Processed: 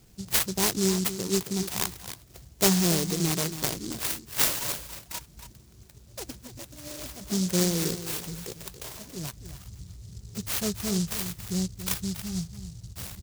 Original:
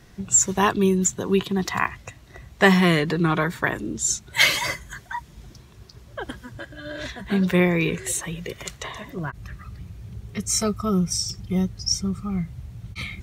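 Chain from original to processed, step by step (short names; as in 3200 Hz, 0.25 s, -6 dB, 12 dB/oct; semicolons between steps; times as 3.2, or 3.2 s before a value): on a send: echo 0.28 s -11.5 dB; on the sum: noise-modulated delay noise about 5700 Hz, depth 0.24 ms; gain -6 dB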